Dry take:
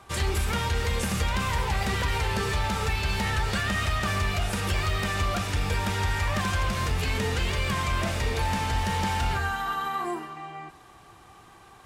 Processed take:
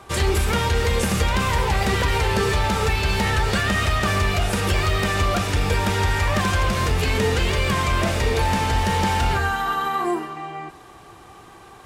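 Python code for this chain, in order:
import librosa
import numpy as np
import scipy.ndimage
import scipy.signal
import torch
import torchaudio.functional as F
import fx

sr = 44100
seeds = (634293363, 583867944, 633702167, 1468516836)

y = fx.peak_eq(x, sr, hz=410.0, db=4.5, octaves=1.2)
y = y * librosa.db_to_amplitude(5.5)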